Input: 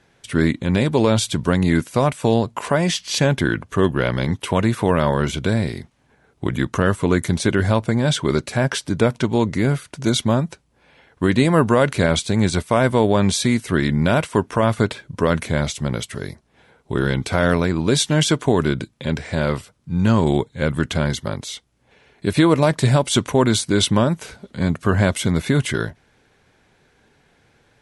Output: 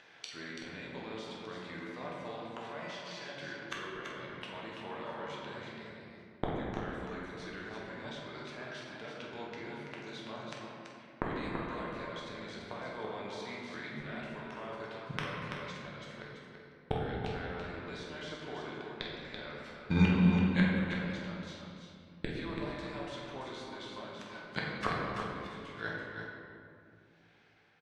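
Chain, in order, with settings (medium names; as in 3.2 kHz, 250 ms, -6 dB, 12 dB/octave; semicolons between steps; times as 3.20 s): fade out at the end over 5.61 s; high-pass 1.3 kHz 6 dB/octave; gate -49 dBFS, range -50 dB; treble shelf 4.5 kHz +8 dB; in parallel at +1.5 dB: level held to a coarse grid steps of 9 dB; on the sum: peak limiter -8.5 dBFS, peak gain reduction 11 dB; upward compressor, threshold -27 dBFS; inverted gate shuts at -19 dBFS, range -27 dB; distance through air 230 m; doubling 48 ms -11 dB; delay 334 ms -6.5 dB; reverberation RT60 2.4 s, pre-delay 6 ms, DRR -3.5 dB; trim +3 dB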